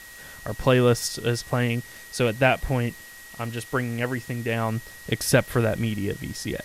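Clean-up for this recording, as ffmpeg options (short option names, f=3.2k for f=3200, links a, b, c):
-af "adeclick=t=4,bandreject=f=1.9k:w=30,afftdn=nr=25:nf=-44"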